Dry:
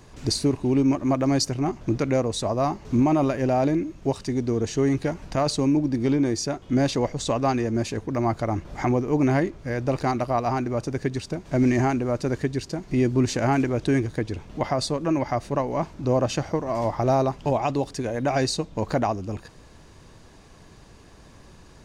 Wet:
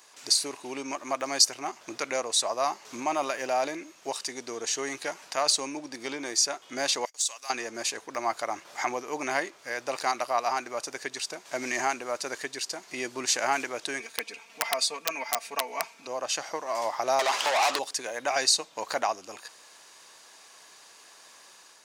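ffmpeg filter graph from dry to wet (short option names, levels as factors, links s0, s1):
-filter_complex "[0:a]asettb=1/sr,asplit=3[s0][s1][s2];[s0]atrim=end=7.054[s3];[s1]atrim=start=7.05:end=7.5,asetpts=PTS-STARTPTS,afade=t=in:d=0.004:c=qsin,afade=t=out:st=0.446:d=0.004:c=qsin,agate=range=0.0447:threshold=0.0178:ratio=16:release=100:detection=peak,aderivative,asoftclip=type=hard:threshold=0.0631[s4];[s2]atrim=start=7.496[s5];[s3][s4]acrossfade=d=0.004:c1=hsin:c2=qsin[s6];[s6][s5]acrossfade=d=0.004:c1=qsin:c2=hsin,asettb=1/sr,asplit=3[s7][s8][s9];[s7]atrim=end=14.004[s10];[s8]atrim=start=14:end=16.07,asetpts=PTS-STARTPTS,afade=t=in:d=0.004:c=qsin,afade=t=out:st=2.066:d=0.004:c=qsin,equalizer=f=2400:t=o:w=0.24:g=12.5,aecho=1:1:4.4:0.93,atrim=end_sample=91287,aeval=exprs='(mod(3.55*val(0)+1,2)-1)/3.55':c=same[s11];[s9]atrim=start=16.066[s12];[s10][s11]acrossfade=d=0.004:c1=hsin:c2=qsin[s13];[s13][s12]acrossfade=d=0.004:c1=qsin:c2=hsin,asettb=1/sr,asplit=3[s14][s15][s16];[s14]atrim=end=17.194[s17];[s15]atrim=start=17.19:end=17.79,asetpts=PTS-STARTPTS,afade=t=in:d=0.004:c=qsin,afade=t=out:st=0.596:d=0.004:c=qsin,highpass=f=230:p=1,acompressor=threshold=0.0355:ratio=3:attack=3.2:release=140:knee=1:detection=peak,asplit=2[s18][s19];[s19]highpass=f=720:p=1,volume=31.6,asoftclip=type=tanh:threshold=0.188[s20];[s18][s20]amix=inputs=2:normalize=0,lowpass=f=5100:p=1,volume=0.501[s21];[s16]atrim=start=17.786[s22];[s17][s21]acrossfade=d=0.004:c1=hsin:c2=qsin[s23];[s23][s22]acrossfade=d=0.004:c1=qsin:c2=hsin,highpass=820,highshelf=f=4300:g=9.5,dynaudnorm=f=300:g=3:m=1.5,volume=0.75"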